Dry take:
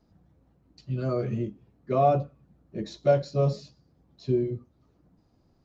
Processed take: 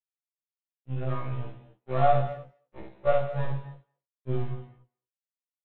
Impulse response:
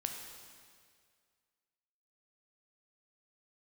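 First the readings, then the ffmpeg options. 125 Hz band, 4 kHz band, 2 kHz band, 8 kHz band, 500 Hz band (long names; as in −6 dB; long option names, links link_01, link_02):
−2.0 dB, −4.5 dB, +4.0 dB, can't be measured, −3.5 dB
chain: -filter_complex "[0:a]aeval=exprs='if(lt(val(0),0),0.447*val(0),val(0))':channel_layout=same,equalizer=frequency=240:width=1.4:gain=-12,aresample=8000,aeval=exprs='sgn(val(0))*max(abs(val(0))-0.0075,0)':channel_layout=same,aresample=44100,asplit=2[link_01][link_02];[link_02]adelay=220,highpass=300,lowpass=3400,asoftclip=type=hard:threshold=-21dB,volume=-27dB[link_03];[link_01][link_03]amix=inputs=2:normalize=0,asplit=2[link_04][link_05];[1:a]atrim=start_sample=2205,afade=type=out:start_time=0.29:duration=0.01,atrim=end_sample=13230,adelay=53[link_06];[link_05][link_06]afir=irnorm=-1:irlink=0,volume=-2dB[link_07];[link_04][link_07]amix=inputs=2:normalize=0,afftfilt=real='re*1.73*eq(mod(b,3),0)':imag='im*1.73*eq(mod(b,3),0)':win_size=2048:overlap=0.75,volume=2.5dB"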